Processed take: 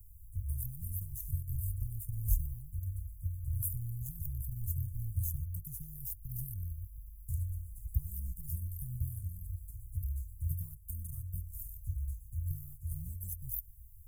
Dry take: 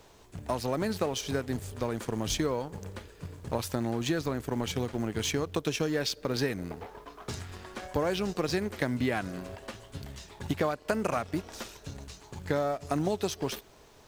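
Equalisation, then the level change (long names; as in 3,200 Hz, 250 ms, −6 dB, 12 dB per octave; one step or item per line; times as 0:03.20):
inverse Chebyshev band-stop filter 270–4,500 Hz, stop band 60 dB
notch filter 5,800 Hz, Q 18
+11.5 dB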